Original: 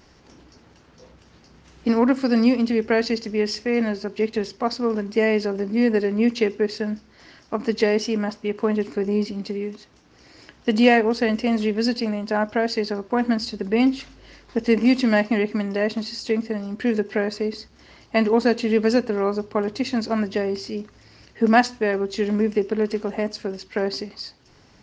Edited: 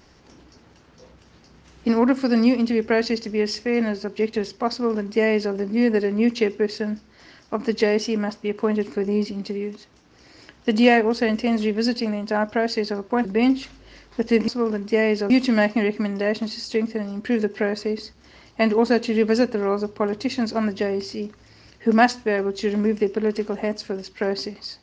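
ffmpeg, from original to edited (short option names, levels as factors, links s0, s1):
-filter_complex "[0:a]asplit=4[s0][s1][s2][s3];[s0]atrim=end=13.252[s4];[s1]atrim=start=13.618:end=14.852[s5];[s2]atrim=start=4.718:end=5.542[s6];[s3]atrim=start=14.848[s7];[s4][s5]acrossfade=d=0.004:c1=hsin:c2=hsin[s8];[s8][s6]acrossfade=d=0.004:c1=hsin:c2=hsin[s9];[s9][s7]acrossfade=d=0.004:c1=hsin:c2=hsin"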